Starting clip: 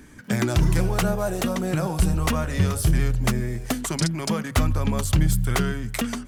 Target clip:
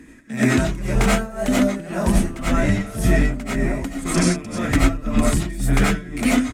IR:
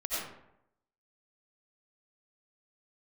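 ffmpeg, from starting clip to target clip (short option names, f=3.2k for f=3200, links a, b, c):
-filter_complex "[0:a]asetrate=42336,aresample=44100,asplit=2[a][b];[b]adelay=1749,volume=-6dB,highshelf=f=4k:g=-39.4[c];[a][c]amix=inputs=2:normalize=0,asetrate=49501,aresample=44100,atempo=0.890899,equalizer=f=250:t=o:w=1:g=10,equalizer=f=2k:t=o:w=1:g=7,equalizer=f=8k:t=o:w=1:g=9[d];[1:a]atrim=start_sample=2205,afade=t=out:st=0.18:d=0.01,atrim=end_sample=8379[e];[d][e]afir=irnorm=-1:irlink=0,tremolo=f=1.9:d=0.84,highshelf=f=4.8k:g=-7.5"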